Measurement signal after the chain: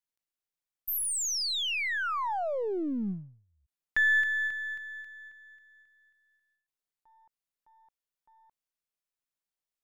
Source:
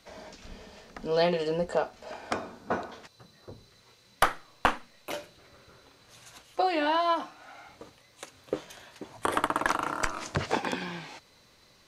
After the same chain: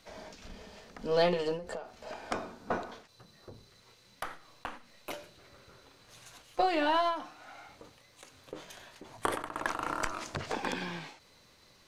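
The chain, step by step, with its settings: partial rectifier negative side -3 dB; endings held to a fixed fall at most 110 dB/s

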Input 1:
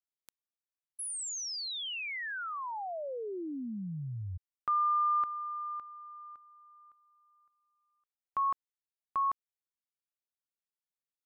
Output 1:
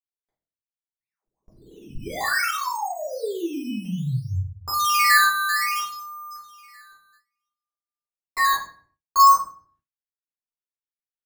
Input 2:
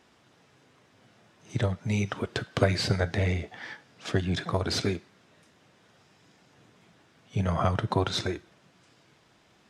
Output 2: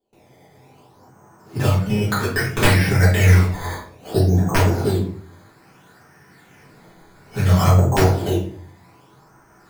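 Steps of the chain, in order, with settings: in parallel at -8 dB: saturation -24.5 dBFS; on the sum: LFO low-pass saw up 0.26 Hz 610–3300 Hz; decimation with a swept rate 11×, swing 100% 0.61 Hz; integer overflow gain 10 dB; simulated room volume 51 m³, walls mixed, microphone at 2 m; gate with hold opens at -37 dBFS, closes at -43 dBFS, hold 203 ms, range -23 dB; trim -4.5 dB

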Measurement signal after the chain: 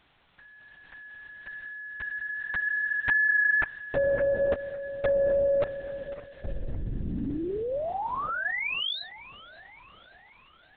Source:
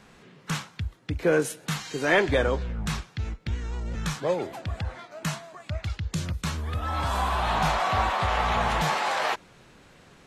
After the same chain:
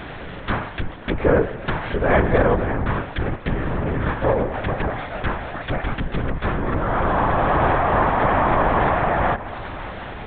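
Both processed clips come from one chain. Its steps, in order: spectral levelling over time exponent 0.6; low-pass that closes with the level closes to 1.5 kHz, closed at -22 dBFS; on a send: feedback echo behind a band-pass 564 ms, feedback 55%, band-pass 1.2 kHz, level -15 dB; on the sum: LPC vocoder at 8 kHz whisper; trim +4 dB

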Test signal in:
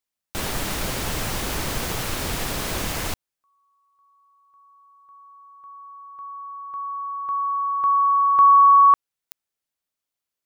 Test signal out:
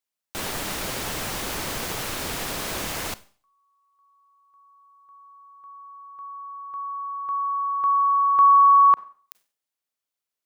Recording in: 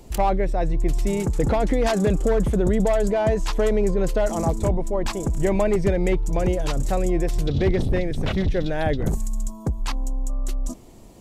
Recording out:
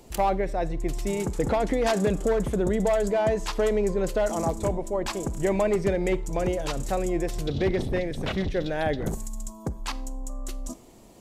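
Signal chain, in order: bass shelf 150 Hz -9 dB; Schroeder reverb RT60 0.44 s, combs from 31 ms, DRR 17.5 dB; trim -1.5 dB

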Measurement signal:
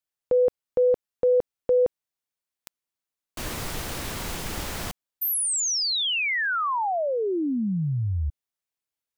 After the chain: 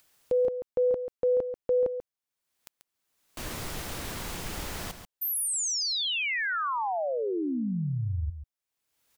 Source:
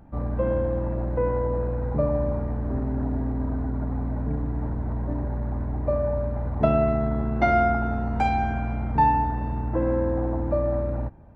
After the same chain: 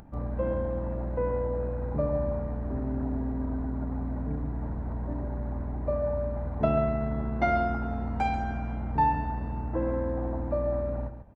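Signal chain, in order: upward compressor, threshold -39 dBFS; on a send: delay 138 ms -10 dB; on the sum: trim -4.5 dB

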